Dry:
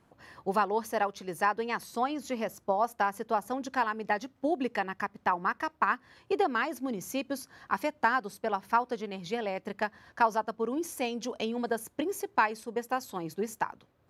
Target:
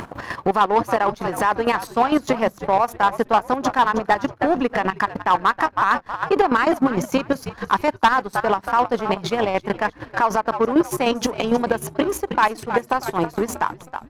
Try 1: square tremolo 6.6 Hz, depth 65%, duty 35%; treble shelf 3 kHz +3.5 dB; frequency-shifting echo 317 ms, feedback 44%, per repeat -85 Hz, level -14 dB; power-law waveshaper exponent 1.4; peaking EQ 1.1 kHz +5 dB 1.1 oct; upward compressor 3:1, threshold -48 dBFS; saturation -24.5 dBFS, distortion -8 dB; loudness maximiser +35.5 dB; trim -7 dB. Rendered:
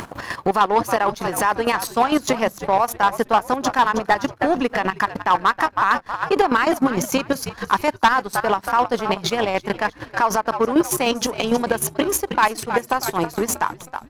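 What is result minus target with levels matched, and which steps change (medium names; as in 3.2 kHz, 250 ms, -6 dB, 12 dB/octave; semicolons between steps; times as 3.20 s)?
8 kHz band +8.0 dB
change: treble shelf 3 kHz -6 dB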